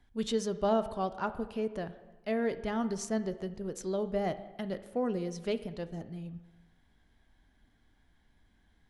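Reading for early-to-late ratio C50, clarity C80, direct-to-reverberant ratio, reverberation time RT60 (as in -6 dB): 13.5 dB, 15.0 dB, 10.5 dB, 1.2 s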